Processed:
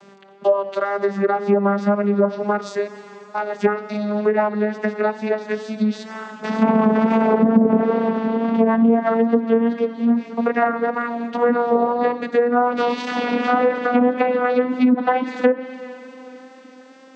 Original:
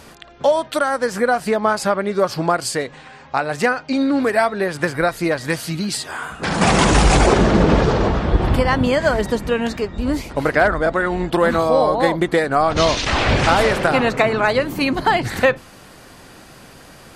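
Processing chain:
vocoder with a gliding carrier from G3, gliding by +5 semitones
low-shelf EQ 140 Hz −11.5 dB
four-comb reverb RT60 3.4 s, combs from 31 ms, DRR 12 dB
treble cut that deepens with the level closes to 540 Hz, closed at −10.5 dBFS
tape wow and flutter 20 cents
level +2 dB

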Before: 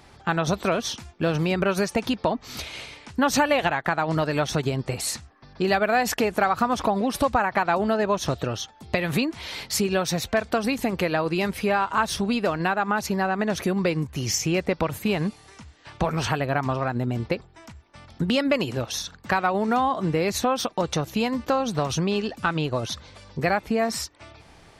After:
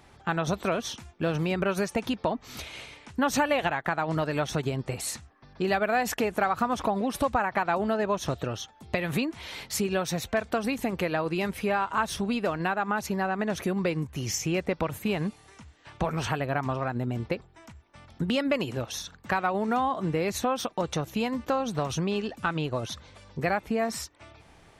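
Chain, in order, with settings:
parametric band 4,700 Hz −4.5 dB 0.49 octaves
level −4 dB

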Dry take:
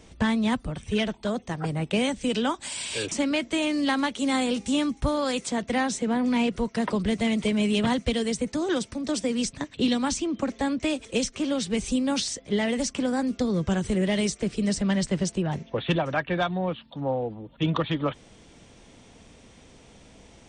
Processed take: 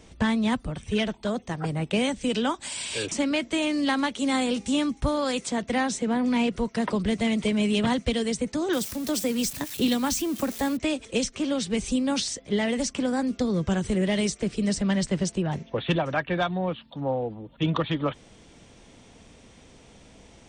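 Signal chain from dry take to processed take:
0:08.73–0:10.77: spike at every zero crossing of −27.5 dBFS

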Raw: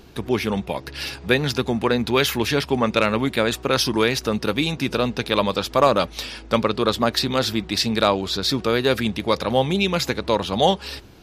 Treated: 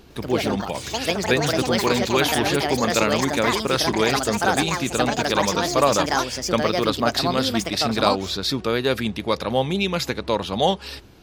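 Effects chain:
delay with pitch and tempo change per echo 104 ms, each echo +5 semitones, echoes 2
level −2 dB

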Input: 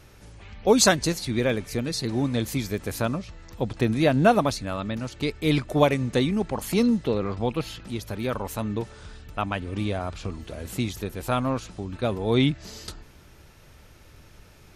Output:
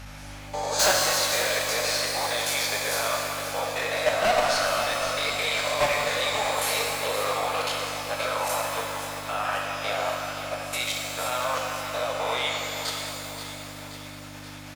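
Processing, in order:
peak hold with a rise ahead of every peak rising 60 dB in 0.47 s
Butterworth high-pass 550 Hz 48 dB per octave
high-shelf EQ 11,000 Hz −8.5 dB
output level in coarse steps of 19 dB
mains hum 50 Hz, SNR 16 dB
soft clipping −29 dBFS, distortion −3 dB
repeating echo 528 ms, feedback 57%, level −10.5 dB
reverb with rising layers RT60 2.2 s, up +12 semitones, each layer −8 dB, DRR −1 dB
level +9 dB

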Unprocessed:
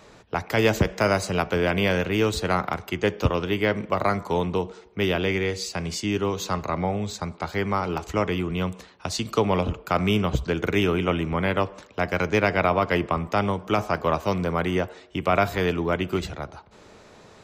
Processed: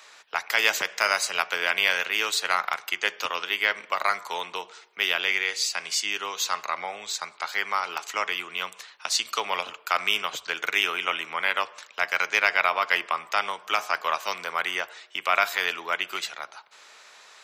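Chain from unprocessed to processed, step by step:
high-pass filter 1,400 Hz 12 dB per octave
level +6 dB

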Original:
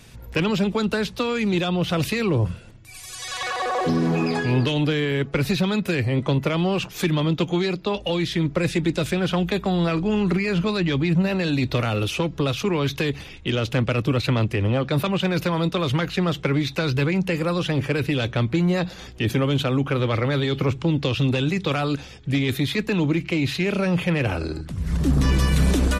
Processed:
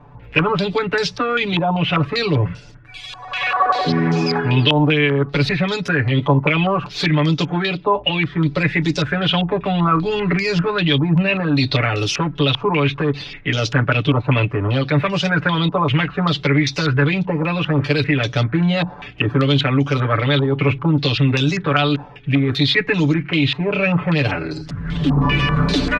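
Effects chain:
comb filter 6.9 ms, depth 97%
low-pass on a step sequencer 5.1 Hz 950–5,500 Hz

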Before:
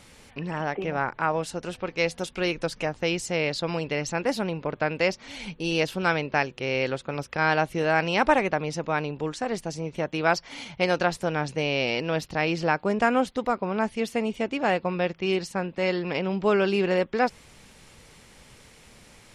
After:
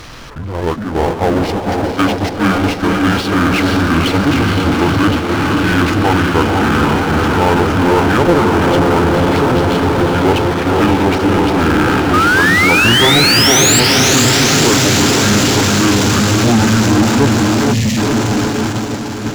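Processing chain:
pitch shift by two crossfaded delay taps −10 semitones
sound drawn into the spectrogram rise, 0:12.13–0:13.80, 1,200–7,800 Hz −24 dBFS
on a send: feedback delay with all-pass diffusion 498 ms, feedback 79%, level −4 dB
on the sum: noise gate −28 dBFS, range −14 dB
time-frequency box erased 0:17.74–0:17.98, 260–1,700 Hz
power curve on the samples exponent 0.5
level +4.5 dB

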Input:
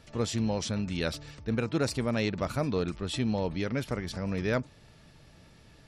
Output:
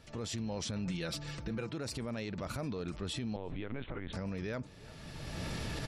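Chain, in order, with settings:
camcorder AGC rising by 23 dB per second
0:03.36–0:04.13: linear-prediction vocoder at 8 kHz pitch kept
slap from a distant wall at 59 metres, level −27 dB
brickwall limiter −26.5 dBFS, peak gain reduction 11 dB
0:00.85–0:01.70: comb filter 5.9 ms, depth 62%
level −3 dB

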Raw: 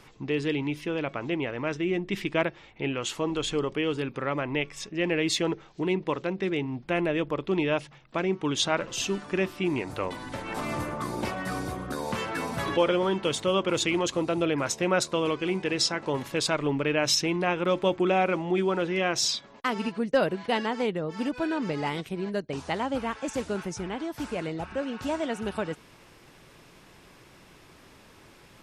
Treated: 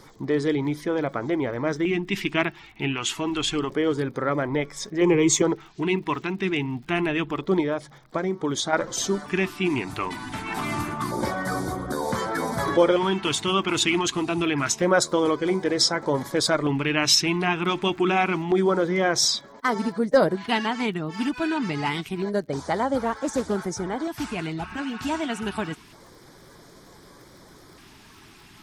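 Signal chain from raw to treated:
spectral magnitudes quantised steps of 15 dB
low-shelf EQ 220 Hz −4 dB
0:07.60–0:08.73: downward compressor, threshold −28 dBFS, peak gain reduction 6.5 dB
auto-filter notch square 0.27 Hz 530–2,700 Hz
surface crackle 49 per second −51 dBFS
0:05.01–0:05.42: EQ curve with evenly spaced ripples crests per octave 0.72, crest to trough 16 dB
0:23.04–0:23.56: highs frequency-modulated by the lows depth 0.22 ms
level +6.5 dB

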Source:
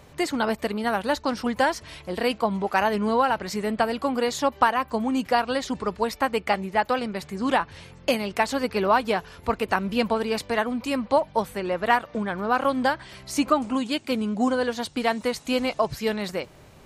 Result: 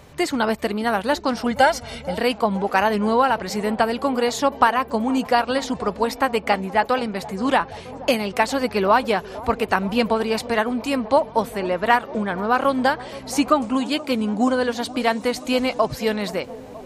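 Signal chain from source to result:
0:01.51–0:02.18: comb filter 1.4 ms, depth 76%
on a send: delay with a band-pass on its return 476 ms, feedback 77%, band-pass 460 Hz, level −17 dB
on the sum: level +3.5 dB

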